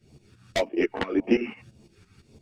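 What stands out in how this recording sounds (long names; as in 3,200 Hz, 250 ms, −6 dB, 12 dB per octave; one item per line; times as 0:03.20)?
phaser sweep stages 2, 1.8 Hz, lowest notch 550–1,400 Hz
tremolo saw up 5.9 Hz, depth 80%
a shimmering, thickened sound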